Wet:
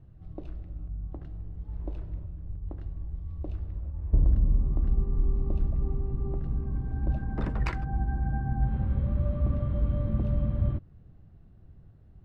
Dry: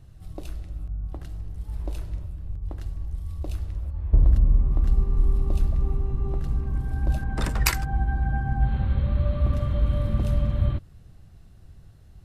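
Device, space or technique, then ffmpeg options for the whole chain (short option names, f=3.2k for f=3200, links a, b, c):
phone in a pocket: -af "lowpass=3.3k,equalizer=f=240:t=o:w=2.3:g=5,highshelf=f=2k:g=-10,volume=-5.5dB"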